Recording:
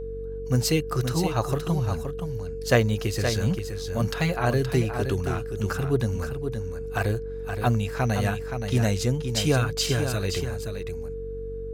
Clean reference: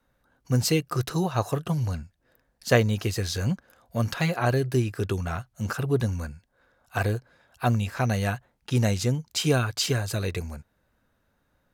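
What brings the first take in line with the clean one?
clip repair -8.5 dBFS; de-hum 47.4 Hz, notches 7; band-stop 450 Hz, Q 30; inverse comb 522 ms -7.5 dB

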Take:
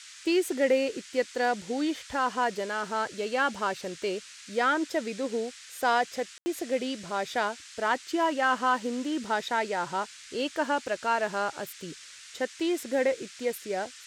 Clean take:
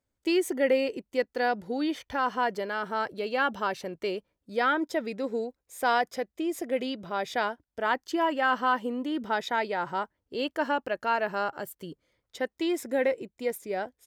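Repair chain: room tone fill 6.38–6.46 s; noise print and reduce 30 dB

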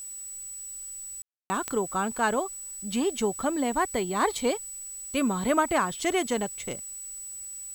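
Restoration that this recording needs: de-click; band-stop 7.9 kHz, Q 30; room tone fill 1.22–1.50 s; noise print and reduce 30 dB

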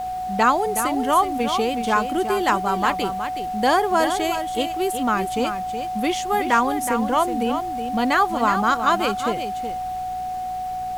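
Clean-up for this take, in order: de-hum 58.8 Hz, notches 4; band-stop 740 Hz, Q 30; noise print and reduce 30 dB; inverse comb 370 ms -8.5 dB

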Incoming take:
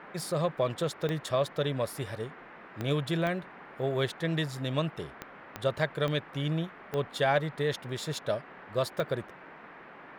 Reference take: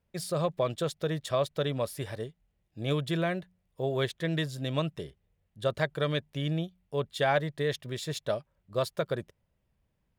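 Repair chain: de-click; noise print and reduce 26 dB

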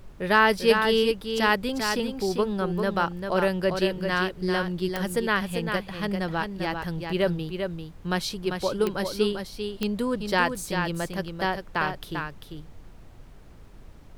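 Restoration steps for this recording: de-click; noise print and reduce 26 dB; inverse comb 395 ms -6 dB

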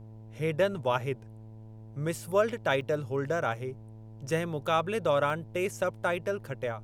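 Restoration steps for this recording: de-hum 109.8 Hz, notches 9; interpolate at 2.81/5.30 s, 2.7 ms; expander -39 dBFS, range -21 dB

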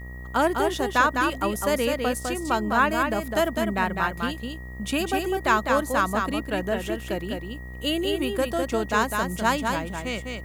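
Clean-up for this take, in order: de-hum 62.3 Hz, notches 21; band-stop 1.9 kHz, Q 30; expander -29 dBFS, range -21 dB; inverse comb 204 ms -4.5 dB

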